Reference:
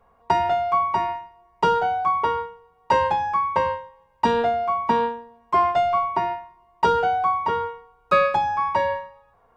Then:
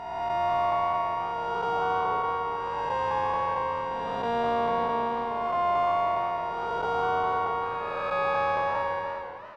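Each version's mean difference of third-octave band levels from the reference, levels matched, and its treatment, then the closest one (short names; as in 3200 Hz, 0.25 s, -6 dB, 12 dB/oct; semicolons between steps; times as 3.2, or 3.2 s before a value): 8.5 dB: time blur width 0.615 s; on a send: frequency-shifting echo 94 ms, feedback 48%, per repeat -87 Hz, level -15.5 dB; on the sum: warbling echo 0.381 s, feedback 56%, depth 123 cents, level -16 dB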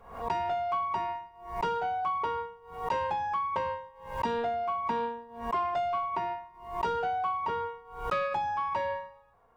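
2.0 dB: compressor 2:1, threshold -24 dBFS, peak gain reduction 6.5 dB; soft clip -16 dBFS, distortion -21 dB; backwards sustainer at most 93 dB/s; gain -5 dB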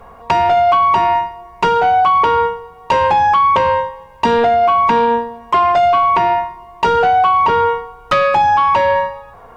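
3.0 dB: compressor 5:1, threshold -21 dBFS, peak gain reduction 8 dB; sine folder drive 8 dB, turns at -8.5 dBFS; maximiser +14.5 dB; gain -6.5 dB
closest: second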